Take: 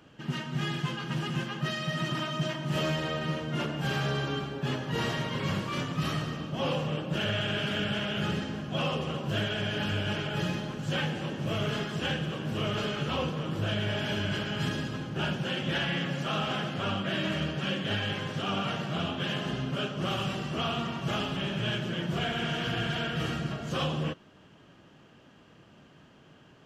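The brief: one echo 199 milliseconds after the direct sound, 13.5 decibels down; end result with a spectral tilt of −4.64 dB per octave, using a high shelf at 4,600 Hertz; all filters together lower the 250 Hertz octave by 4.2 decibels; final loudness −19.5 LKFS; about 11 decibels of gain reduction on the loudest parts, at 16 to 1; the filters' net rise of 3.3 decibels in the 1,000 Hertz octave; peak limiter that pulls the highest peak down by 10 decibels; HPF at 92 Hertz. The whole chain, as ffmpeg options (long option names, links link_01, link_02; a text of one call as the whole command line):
ffmpeg -i in.wav -af "highpass=92,equalizer=frequency=250:width_type=o:gain=-6.5,equalizer=frequency=1000:width_type=o:gain=4.5,highshelf=frequency=4600:gain=3.5,acompressor=threshold=-37dB:ratio=16,alimiter=level_in=13.5dB:limit=-24dB:level=0:latency=1,volume=-13.5dB,aecho=1:1:199:0.211,volume=25.5dB" out.wav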